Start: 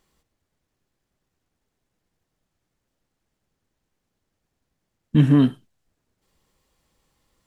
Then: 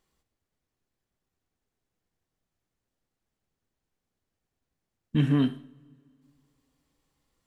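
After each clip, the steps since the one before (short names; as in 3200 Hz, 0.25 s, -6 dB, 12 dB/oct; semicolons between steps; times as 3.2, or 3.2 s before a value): two-slope reverb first 0.63 s, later 2.7 s, from -18 dB, DRR 12.5 dB; dynamic EQ 2500 Hz, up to +5 dB, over -45 dBFS, Q 0.93; gain -7.5 dB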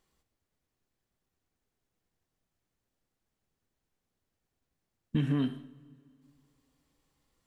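compressor, threshold -25 dBFS, peak gain reduction 7.5 dB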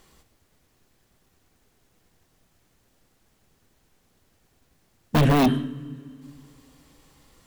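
in parallel at -6 dB: bit-crush 4-bit; on the sum: sine folder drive 15 dB, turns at -14 dBFS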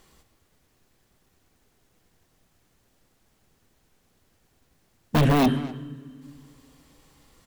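speakerphone echo 0.25 s, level -13 dB; gain -1 dB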